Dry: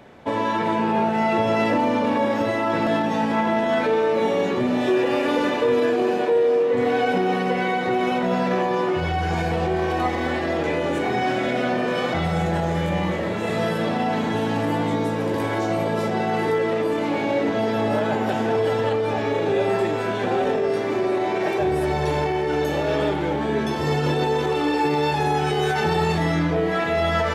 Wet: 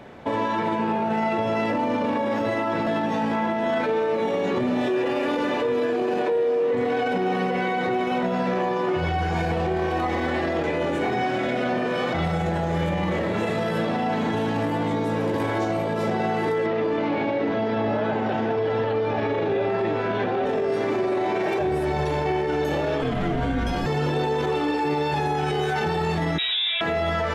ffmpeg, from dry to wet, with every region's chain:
-filter_complex "[0:a]asettb=1/sr,asplit=3[a][b][c];[a]atrim=end=16.664[d];[b]atrim=start=16.66:end=20.46,asetpts=PTS-STARTPTS,afade=t=in:d=0.004:c=qsin,afade=t=out:st=3.796:d=0.004:c=qsin,lowpass=f=5.9k:w=0.5412,lowpass=f=5.9k:w=1.3066,acrossover=split=3700[e][f];[f]acompressor=threshold=-50dB:ratio=4:attack=1:release=60[g];[e][g]amix=inputs=2:normalize=0[h];[c]atrim=start=20.456[i];[d][h]acrossfade=d=0.004:c1=hsin:c2=qsin[j];[j][i]acrossfade=d=0.004:c1=qsin:c2=hsin,asettb=1/sr,asplit=3[k][l][m];[k]atrim=end=23.024[n];[l]atrim=start=23.02:end=23.86,asetpts=PTS-STARTPTS,afade=t=in:d=0.004:c=qsin,afade=t=out:st=0.836:d=0.004:c=qsin,bandreject=f=50:t=h:w=6,bandreject=f=100:t=h:w=6,bandreject=f=150:t=h:w=6,bandreject=f=200:t=h:w=6,bandreject=f=250:t=h:w=6,bandreject=f=300:t=h:w=6,bandreject=f=350:t=h:w=6,bandreject=f=400:t=h:w=6,afreqshift=-160[o];[m]atrim=start=23.856[p];[n][o]acrossfade=d=0.004:c1=hsin:c2=qsin[q];[q][p]acrossfade=d=0.004:c1=qsin:c2=hsin,asettb=1/sr,asplit=3[r][s][t];[r]atrim=end=26.384[u];[s]atrim=start=26.38:end=26.81,asetpts=PTS-STARTPTS,afade=t=in:d=0.004:c=qsin,afade=t=out:st=0.426:d=0.004:c=qsin,highpass=f=230:p=1,aecho=1:1:4.8:0.47,atrim=end_sample=18963,lowpass=f=3.4k:t=q:w=0.5098,lowpass=f=3.4k:t=q:w=0.6013,lowpass=f=3.4k:t=q:w=0.9,lowpass=f=3.4k:t=q:w=2.563,afreqshift=-4000[v];[t]atrim=start=26.806[w];[u][v]acrossfade=d=0.004:c1=hsin:c2=qsin[x];[x][w]acrossfade=d=0.004:c1=qsin:c2=hsin,highshelf=f=5k:g=-5,alimiter=limit=-20dB:level=0:latency=1:release=43,volume=3.5dB"

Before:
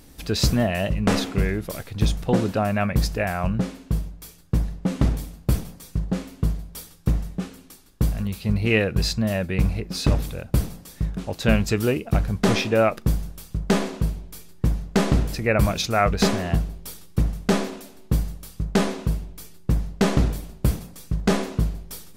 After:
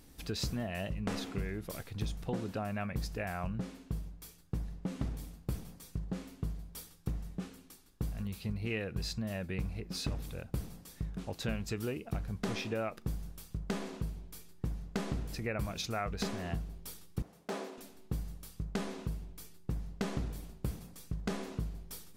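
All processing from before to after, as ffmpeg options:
-filter_complex "[0:a]asettb=1/sr,asplit=3[a][b][c];[a]atrim=end=17.224[d];[b]atrim=start=17.22:end=17.78,asetpts=PTS-STARTPTS,afade=t=in:d=0.004:c=qsin,afade=t=out:st=0.556:d=0.004:c=qsin,asoftclip=type=hard:threshold=-15.5dB,highpass=500,tiltshelf=f=720:g=6[e];[c]atrim=start=17.776[f];[d][e]acrossfade=d=0.004:c1=hsin:c2=qsin[g];[g][f]acrossfade=d=0.004:c1=qsin:c2=hsin,equalizer=f=590:w=6.6:g=-3,acompressor=threshold=-25dB:ratio=3,volume=-9dB"

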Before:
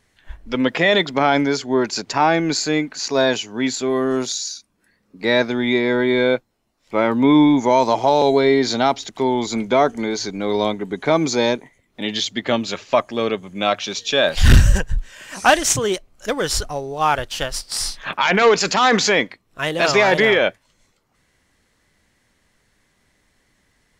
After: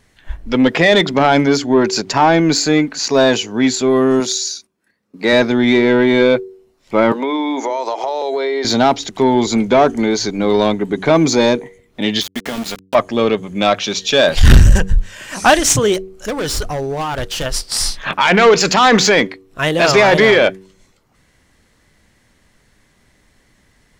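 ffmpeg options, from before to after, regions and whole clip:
-filter_complex "[0:a]asettb=1/sr,asplit=3[a][b][c];[a]atrim=end=4.204[d];[b]atrim=start=4.2:end=5.33,asetpts=PTS-STARTPTS,afade=t=in:d=0.004:c=qsin,afade=t=out:st=1.126:d=0.004:c=qsin,agate=range=-11dB:threshold=-60dB:ratio=16:release=100:detection=peak,highpass=f=210:p=1[e];[c]atrim=start=5.326[f];[d][e]acrossfade=d=0.004:c1=hsin:c2=qsin[g];[g][f]acrossfade=d=0.004:c1=qsin:c2=hsin,asettb=1/sr,asplit=3[h][i][j];[h]atrim=end=7.124[k];[i]atrim=start=7.12:end=8.65,asetpts=PTS-STARTPTS,afade=t=in:d=0.004:c=qsin,afade=t=out:st=1.526:d=0.004:c=qsin,highpass=f=380:w=0.5412,highpass=f=380:w=1.3066,highshelf=f=10k:g=-7.5,acompressor=threshold=-22dB:ratio=10:attack=3.2:release=140:knee=1:detection=peak[l];[j]atrim=start=8.646[m];[k][l]acrossfade=d=0.004:c1=hsin:c2=qsin[n];[n][m]acrossfade=d=0.004:c1=qsin:c2=hsin,asettb=1/sr,asplit=3[o][p][q];[o]atrim=end=12.214[r];[p]atrim=start=12.21:end=12.95,asetpts=PTS-STARTPTS,afade=t=in:d=0.004:c=qsin,afade=t=out:st=0.736:d=0.004:c=qsin,aecho=1:1:4.3:0.49,atrim=end_sample=32634,acompressor=threshold=-25dB:ratio=16:attack=3.2:release=140:knee=1:detection=peak,aeval=exprs='val(0)*gte(abs(val(0)),0.0335)':c=same[s];[q]atrim=start=12.946[t];[r][s]acrossfade=d=0.004:c1=hsin:c2=qsin[u];[u][t]acrossfade=d=0.004:c1=qsin:c2=hsin,asettb=1/sr,asplit=3[v][w][x];[v]atrim=end=15.944[y];[w]atrim=start=15.94:end=17.46,asetpts=PTS-STARTPTS,afade=t=in:d=0.004:c=qsin,afade=t=out:st=1.516:d=0.004:c=qsin,acompressor=threshold=-19dB:ratio=6:attack=3.2:release=140:knee=1:detection=peak,volume=24dB,asoftclip=hard,volume=-24dB[z];[x]atrim=start=17.456[aa];[y][z]acrossfade=d=0.004:c1=hsin:c2=qsin[ab];[ab][aa]acrossfade=d=0.004:c1=qsin:c2=hsin,lowshelf=f=380:g=4,bandreject=f=94.99:t=h:w=4,bandreject=f=189.98:t=h:w=4,bandreject=f=284.97:t=h:w=4,bandreject=f=379.96:t=h:w=4,bandreject=f=474.95:t=h:w=4,acontrast=73,volume=-1dB"

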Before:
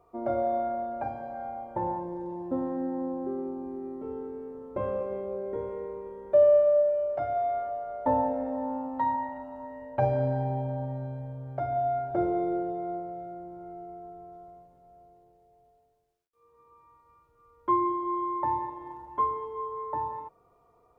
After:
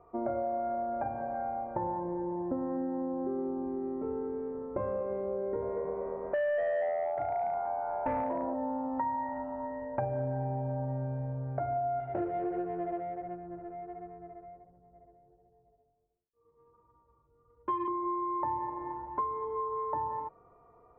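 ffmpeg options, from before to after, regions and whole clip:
-filter_complex "[0:a]asettb=1/sr,asplit=3[a][b][c];[a]atrim=end=5.384[d];[b]atrim=start=5.38:end=8.54,asetpts=PTS-STARTPTS,afade=t=in:d=0.004:c=qsin,afade=t=out:st=3.156:d=0.004:c=qsin,asplit=6[e][f][g][h][i][j];[f]adelay=238,afreqshift=84,volume=-9dB[k];[g]adelay=476,afreqshift=168,volume=-15.4dB[l];[h]adelay=714,afreqshift=252,volume=-21.8dB[m];[i]adelay=952,afreqshift=336,volume=-28.1dB[n];[j]adelay=1190,afreqshift=420,volume=-34.5dB[o];[e][k][l][m][n][o]amix=inputs=6:normalize=0,atrim=end_sample=139356,asoftclip=type=hard:threshold=-22dB[p];[c]atrim=start=8.536[q];[d][p]acrossfade=d=0.004:c1=hsin:c2=qsin[r];[r][q]acrossfade=d=0.004:c1=qsin:c2=hsin,asettb=1/sr,asplit=3[s][t][u];[s]atrim=end=12.004[v];[t]atrim=start=12:end=17.88,asetpts=PTS-STARTPTS,afade=t=in:d=0.004:c=qsin,afade=t=out:st=5.876:d=0.004:c=qsin,flanger=delay=16:depth=5.4:speed=1.4,adynamicsmooth=sensitivity=7:basefreq=630[w];[u]atrim=start=17.876[x];[v][w]acrossfade=d=0.004:c1=hsin:c2=qsin[y];[y][x]acrossfade=d=0.004:c1=qsin:c2=hsin,acompressor=threshold=-34dB:ratio=5,lowpass=f=2.1k:w=0.5412,lowpass=f=2.1k:w=1.3066,volume=3.5dB"

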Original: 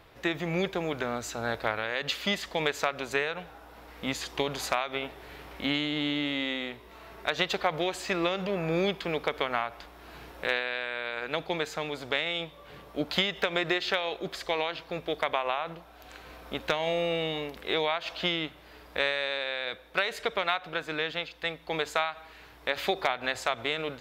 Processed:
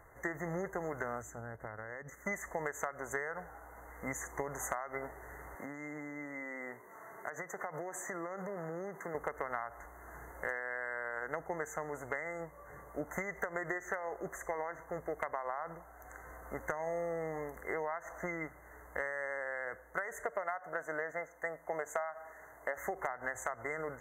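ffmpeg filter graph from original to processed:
-filter_complex "[0:a]asettb=1/sr,asplit=3[a][b][c];[a]atrim=end=1.224[d];[b]atrim=start=1.22:end=2.26,asetpts=PTS-STARTPTS,afade=t=in:d=0.004:c=qsin,afade=t=out:st=1.036:d=0.004:c=qsin,agate=range=-10dB:threshold=-35dB:ratio=16:release=100:detection=peak,equalizer=f=140:t=o:w=2.5:g=12.5,acompressor=threshold=-36dB:ratio=10:attack=3.2:release=140:knee=1:detection=peak[e];[c]atrim=start=2.256[f];[d][e]acrossfade=d=0.004:c1=hsin:c2=qsin[g];[g][f]acrossfade=d=0.004:c1=qsin:c2=hsin,asettb=1/sr,asplit=3[h][i][j];[h]atrim=end=5.554[k];[i]atrim=start=5.55:end=9.15,asetpts=PTS-STARTPTS,afade=t=in:d=0.004:c=qsin,afade=t=out:st=3.596:d=0.004:c=qsin,acompressor=threshold=-31dB:ratio=10:attack=3.2:release=140:knee=1:detection=peak,highpass=f=130:w=0.5412,highpass=f=130:w=1.3066[l];[j]atrim=start=9.146[m];[k][l]acrossfade=d=0.004:c1=hsin:c2=qsin[n];[n][m]acrossfade=d=0.004:c1=qsin:c2=hsin,asettb=1/sr,asplit=3[o][p][q];[o]atrim=end=20.244[r];[p]atrim=start=20.24:end=22.78,asetpts=PTS-STARTPTS,afade=t=in:d=0.004:c=qsin,afade=t=out:st=2.536:d=0.004:c=qsin,highpass=f=180:p=1,equalizer=f=630:w=3.9:g=8.5[s];[q]atrim=start=22.776[t];[r][s]acrossfade=d=0.004:c1=hsin:c2=qsin[u];[u][t]acrossfade=d=0.004:c1=qsin:c2=hsin,afftfilt=real='re*(1-between(b*sr/4096,2100,6000))':imag='im*(1-between(b*sr/4096,2100,6000))':win_size=4096:overlap=0.75,equalizer=f=240:w=0.8:g=-7.5,acompressor=threshold=-32dB:ratio=6,volume=-1dB"

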